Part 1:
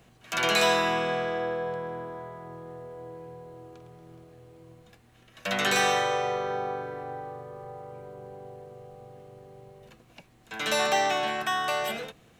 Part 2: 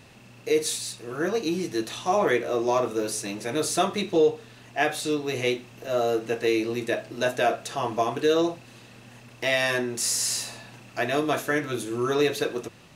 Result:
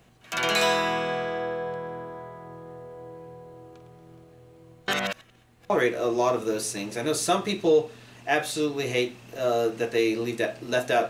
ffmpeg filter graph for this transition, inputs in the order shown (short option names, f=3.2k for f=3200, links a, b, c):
-filter_complex "[0:a]apad=whole_dur=11.09,atrim=end=11.09,asplit=2[a][b];[a]atrim=end=4.882[c];[b]atrim=start=4.878:end=5.702,asetpts=PTS-STARTPTS,areverse[d];[1:a]atrim=start=2.188:end=7.58[e];[c][d]acrossfade=d=0.004:c1=hsin:c2=hsin[f];[f][e]acrossfade=d=0.004:c1=hsin:c2=hsin"